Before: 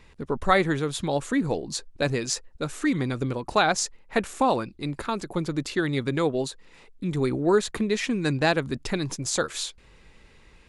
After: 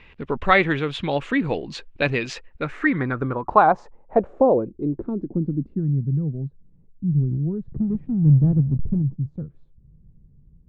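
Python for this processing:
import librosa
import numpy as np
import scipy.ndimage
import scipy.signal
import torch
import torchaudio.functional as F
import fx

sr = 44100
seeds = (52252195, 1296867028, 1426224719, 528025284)

y = fx.halfwave_hold(x, sr, at=(7.68, 9.02))
y = fx.filter_sweep_lowpass(y, sr, from_hz=2700.0, to_hz=150.0, start_s=2.37, end_s=6.06, q=2.7)
y = y * 10.0 ** (2.0 / 20.0)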